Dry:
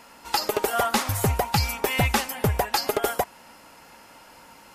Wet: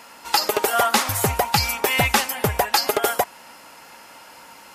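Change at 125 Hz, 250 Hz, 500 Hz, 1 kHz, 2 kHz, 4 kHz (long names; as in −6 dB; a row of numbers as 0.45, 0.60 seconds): −2.0, +0.5, +3.0, +4.5, +5.5, +6.0 decibels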